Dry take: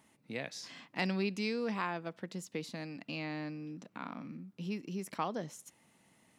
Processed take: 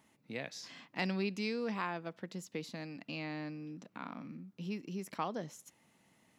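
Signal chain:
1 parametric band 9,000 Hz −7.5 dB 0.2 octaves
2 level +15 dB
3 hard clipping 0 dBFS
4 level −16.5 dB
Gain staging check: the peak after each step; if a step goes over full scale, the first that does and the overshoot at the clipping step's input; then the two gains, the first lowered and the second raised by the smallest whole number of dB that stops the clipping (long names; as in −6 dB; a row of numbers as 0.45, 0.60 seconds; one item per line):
−18.0, −3.0, −3.0, −19.5 dBFS
no step passes full scale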